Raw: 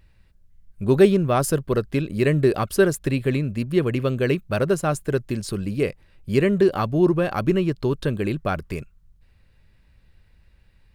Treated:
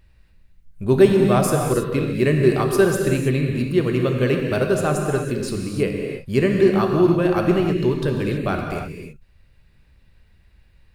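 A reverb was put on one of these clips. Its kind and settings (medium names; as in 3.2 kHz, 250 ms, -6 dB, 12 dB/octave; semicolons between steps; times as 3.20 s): gated-style reverb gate 350 ms flat, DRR 1.5 dB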